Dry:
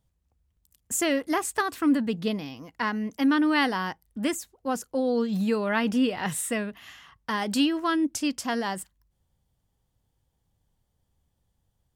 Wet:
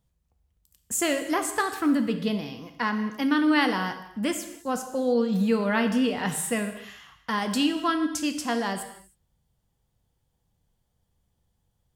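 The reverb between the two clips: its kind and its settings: gated-style reverb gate 340 ms falling, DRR 6.5 dB

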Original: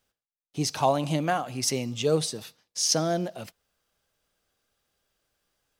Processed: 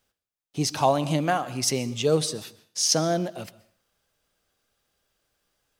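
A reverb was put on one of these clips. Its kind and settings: plate-style reverb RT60 0.55 s, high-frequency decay 0.8×, pre-delay 110 ms, DRR 19 dB; trim +2 dB

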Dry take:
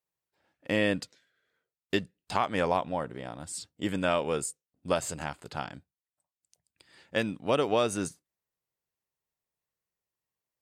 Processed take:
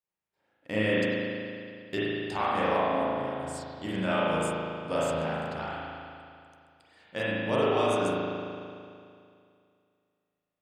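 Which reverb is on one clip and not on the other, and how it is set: spring tank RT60 2.4 s, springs 37 ms, chirp 75 ms, DRR -9 dB; trim -7 dB

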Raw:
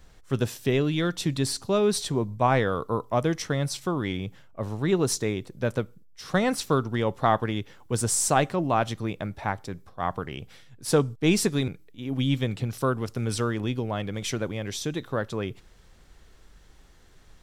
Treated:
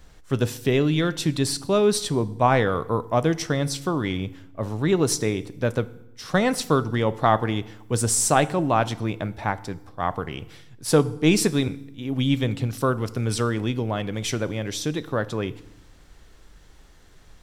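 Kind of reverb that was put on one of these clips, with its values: FDN reverb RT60 0.86 s, low-frequency decay 1.4×, high-frequency decay 0.85×, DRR 15 dB; trim +3 dB

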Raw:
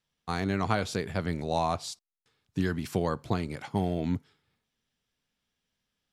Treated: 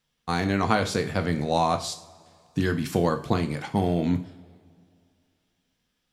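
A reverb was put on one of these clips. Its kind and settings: two-slope reverb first 0.43 s, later 2.5 s, from -21 dB, DRR 7 dB; trim +5 dB

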